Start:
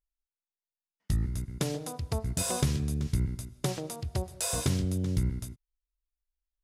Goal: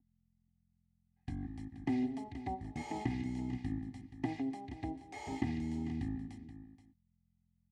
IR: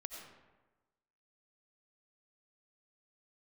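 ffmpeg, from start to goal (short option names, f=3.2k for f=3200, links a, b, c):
-filter_complex "[0:a]aeval=exprs='val(0)+0.00112*(sin(2*PI*50*n/s)+sin(2*PI*2*50*n/s)/2+sin(2*PI*3*50*n/s)/3+sin(2*PI*4*50*n/s)/4+sin(2*PI*5*50*n/s)/5)':c=same,asplit=3[a][b][c];[a]bandpass=f=300:t=q:w=8,volume=0dB[d];[b]bandpass=f=870:t=q:w=8,volume=-6dB[e];[c]bandpass=f=2.24k:t=q:w=8,volume=-9dB[f];[d][e][f]amix=inputs=3:normalize=0,aecho=1:1:2.1:0.51,asetrate=37926,aresample=44100,aecho=1:1:477:0.224,acrossover=split=350|1400|2200[g][h][i][j];[j]alimiter=level_in=33.5dB:limit=-24dB:level=0:latency=1:release=69,volume=-33.5dB[k];[g][h][i][k]amix=inputs=4:normalize=0,volume=9dB"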